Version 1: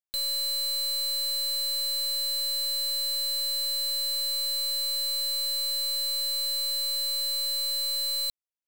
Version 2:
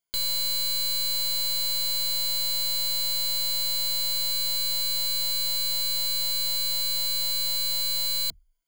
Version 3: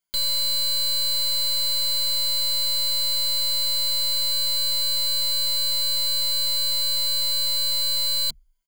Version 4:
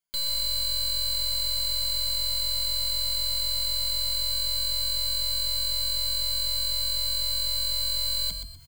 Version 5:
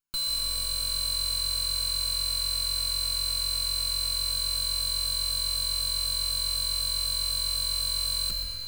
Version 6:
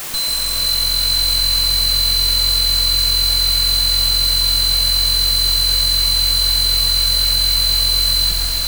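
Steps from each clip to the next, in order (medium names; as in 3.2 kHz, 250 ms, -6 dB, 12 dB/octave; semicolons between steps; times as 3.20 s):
rippled EQ curve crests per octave 1.8, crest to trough 15 dB; trim +5.5 dB
comb 5.2 ms, depth 74%
reverse; upward compressor, threshold -31 dBFS; reverse; frequency-shifting echo 124 ms, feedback 31%, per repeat +44 Hz, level -8 dB; trim -5 dB
comb filter that takes the minimum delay 0.75 ms; algorithmic reverb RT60 4.8 s, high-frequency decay 0.85×, pre-delay 110 ms, DRR 4 dB
echo that smears into a reverb 478 ms, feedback 47%, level -4 dB; word length cut 6-bit, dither triangular; trim +9 dB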